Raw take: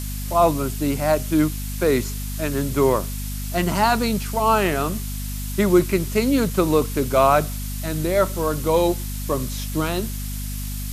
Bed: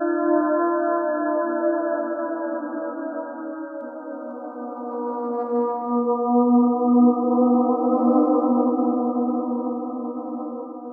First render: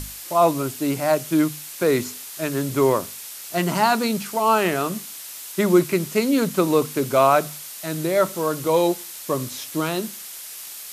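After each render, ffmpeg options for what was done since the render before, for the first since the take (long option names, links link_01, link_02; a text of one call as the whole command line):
ffmpeg -i in.wav -af "bandreject=frequency=50:width_type=h:width=6,bandreject=frequency=100:width_type=h:width=6,bandreject=frequency=150:width_type=h:width=6,bandreject=frequency=200:width_type=h:width=6,bandreject=frequency=250:width_type=h:width=6" out.wav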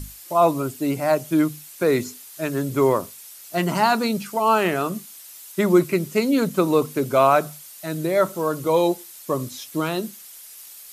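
ffmpeg -i in.wav -af "afftdn=noise_reduction=9:noise_floor=-37" out.wav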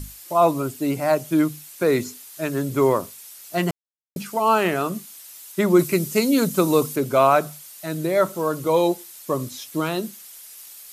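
ffmpeg -i in.wav -filter_complex "[0:a]asettb=1/sr,asplit=3[link_01][link_02][link_03];[link_01]atrim=end=5.794[link_04];[link_02]atrim=start=5.79:end=6.96,asetpts=PTS-STARTPTS,afade=type=in:duration=0.004:curve=qsin,afade=type=out:start_time=1.166:duration=0.004:curve=qsin,bass=frequency=250:gain=2,treble=frequency=4000:gain=8[link_05];[link_03]atrim=start=6.956[link_06];[link_04][link_05]acrossfade=duration=0.004:curve1=hsin:curve2=qsin[link_07];[link_07][link_06]acrossfade=duration=0.004:curve1=qsin:curve2=hsin,asplit=3[link_08][link_09][link_10];[link_08]atrim=end=3.71,asetpts=PTS-STARTPTS,afade=type=out:start_time=3.706:duration=0.004:curve=hsin[link_11];[link_09]atrim=start=3.71:end=4.16,asetpts=PTS-STARTPTS,volume=0[link_12];[link_10]atrim=start=4.16,asetpts=PTS-STARTPTS,afade=type=in:duration=0.004:curve=hsin[link_13];[link_11][link_12][link_13]concat=n=3:v=0:a=1" out.wav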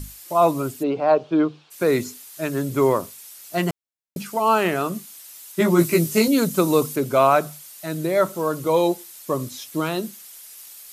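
ffmpeg -i in.wav -filter_complex "[0:a]asplit=3[link_01][link_02][link_03];[link_01]afade=type=out:start_time=0.82:duration=0.02[link_04];[link_02]highpass=110,equalizer=frequency=140:width_type=q:width=4:gain=-7,equalizer=frequency=240:width_type=q:width=4:gain=-5,equalizer=frequency=450:width_type=q:width=4:gain=9,equalizer=frequency=770:width_type=q:width=4:gain=4,equalizer=frequency=1100:width_type=q:width=4:gain=4,equalizer=frequency=2000:width_type=q:width=4:gain=-10,lowpass=frequency=3800:width=0.5412,lowpass=frequency=3800:width=1.3066,afade=type=in:start_time=0.82:duration=0.02,afade=type=out:start_time=1.7:duration=0.02[link_05];[link_03]afade=type=in:start_time=1.7:duration=0.02[link_06];[link_04][link_05][link_06]amix=inputs=3:normalize=0,asettb=1/sr,asplit=3[link_07][link_08][link_09];[link_07]atrim=end=5.584[link_10];[link_08]atrim=start=5.58:end=6.28,asetpts=PTS-STARTPTS,afade=type=in:duration=0.004:curve=qsin,afade=type=out:start_time=0.696:duration=0.004:curve=qsin,asplit=2[link_11][link_12];[link_12]adelay=18,volume=-2dB[link_13];[link_11][link_13]amix=inputs=2:normalize=0,atrim=end_sample=30870[link_14];[link_09]atrim=start=6.276[link_15];[link_10][link_14]acrossfade=duration=0.004:curve1=hsin:curve2=qsin[link_16];[link_16][link_15]acrossfade=duration=0.004:curve1=qsin:curve2=hsin" out.wav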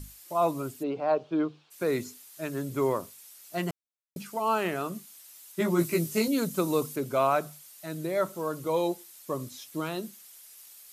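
ffmpeg -i in.wav -af "volume=-8.5dB" out.wav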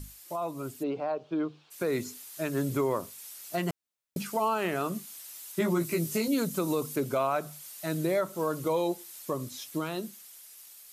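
ffmpeg -i in.wav -af "alimiter=level_in=0.5dB:limit=-24dB:level=0:latency=1:release=293,volume=-0.5dB,dynaudnorm=framelen=320:gausssize=11:maxgain=5.5dB" out.wav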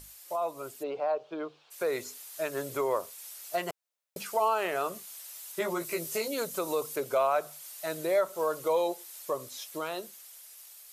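ffmpeg -i in.wav -af "lowshelf=frequency=350:width_type=q:width=1.5:gain=-12" out.wav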